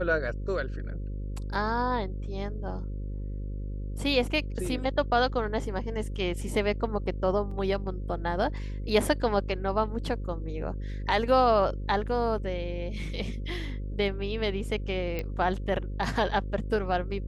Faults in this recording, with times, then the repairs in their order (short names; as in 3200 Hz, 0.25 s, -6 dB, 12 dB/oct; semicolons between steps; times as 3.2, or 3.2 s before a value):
buzz 50 Hz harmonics 11 -34 dBFS
7.51 gap 3.7 ms
15.19 pop -19 dBFS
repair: de-click; de-hum 50 Hz, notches 11; interpolate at 7.51, 3.7 ms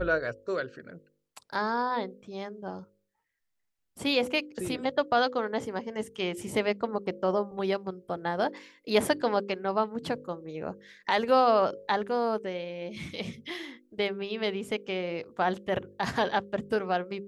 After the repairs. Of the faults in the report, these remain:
none